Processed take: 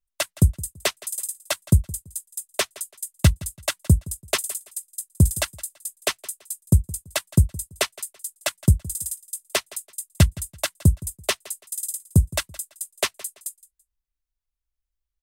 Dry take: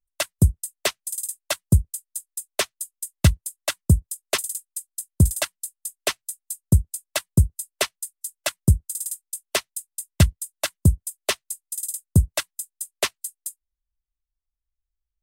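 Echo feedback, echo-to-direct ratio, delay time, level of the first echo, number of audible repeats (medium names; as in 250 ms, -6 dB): 28%, -19.5 dB, 167 ms, -20.0 dB, 2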